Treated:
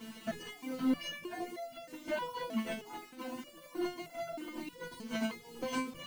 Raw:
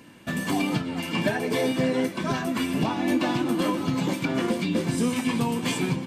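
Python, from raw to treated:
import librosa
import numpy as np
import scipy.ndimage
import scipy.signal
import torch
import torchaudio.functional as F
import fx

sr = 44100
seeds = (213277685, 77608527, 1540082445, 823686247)

y = fx.air_absorb(x, sr, metres=110.0)
y = fx.echo_thinned(y, sr, ms=838, feedback_pct=27, hz=300.0, wet_db=-8)
y = fx.over_compress(y, sr, threshold_db=-30.0, ratio=-0.5)
y = fx.ripple_eq(y, sr, per_octave=1.9, db=10)
y = 10.0 ** (-23.0 / 20.0) * np.tanh(y / 10.0 ** (-23.0 / 20.0))
y = fx.echo_tape(y, sr, ms=72, feedback_pct=41, wet_db=-12, lp_hz=2500.0, drive_db=27.0, wow_cents=34)
y = fx.dereverb_blind(y, sr, rt60_s=0.79)
y = fx.quant_dither(y, sr, seeds[0], bits=8, dither='none')
y = fx.hum_notches(y, sr, base_hz=50, count=5)
y = fx.resonator_held(y, sr, hz=3.2, low_hz=220.0, high_hz=680.0)
y = y * librosa.db_to_amplitude(8.5)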